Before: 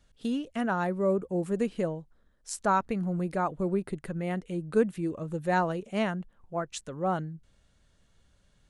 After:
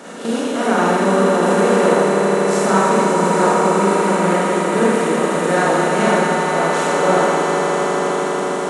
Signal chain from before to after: spectral levelling over time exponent 0.4; high-pass 180 Hz 24 dB/octave; echo with a slow build-up 81 ms, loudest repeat 8, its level -10.5 dB; Schroeder reverb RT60 1.6 s, combs from 31 ms, DRR -7 dB

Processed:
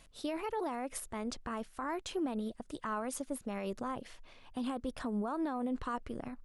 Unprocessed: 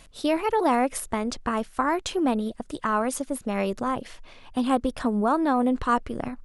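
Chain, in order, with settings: peak limiter -19 dBFS, peak gain reduction 10 dB; trim -9 dB

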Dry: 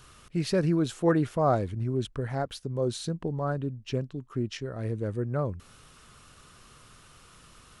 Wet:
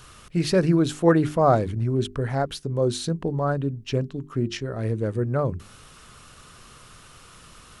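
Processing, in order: hum notches 50/100/150/200/250/300/350/400 Hz; trim +6 dB

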